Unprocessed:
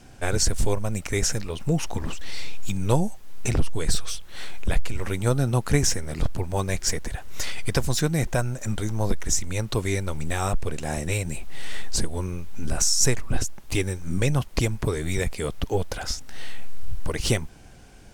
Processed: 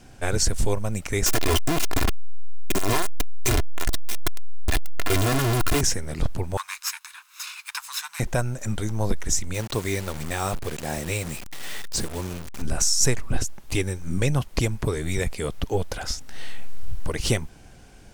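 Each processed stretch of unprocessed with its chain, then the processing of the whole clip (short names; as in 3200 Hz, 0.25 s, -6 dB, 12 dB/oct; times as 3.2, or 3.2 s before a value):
1.26–5.81 infinite clipping + comb 2.9 ms, depth 59%
6.57–8.2 minimum comb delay 0.77 ms + elliptic high-pass 990 Hz, stop band 50 dB
9.54–12.62 LPF 11000 Hz + requantised 6-bit, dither none + low shelf 72 Hz -9 dB
whole clip: dry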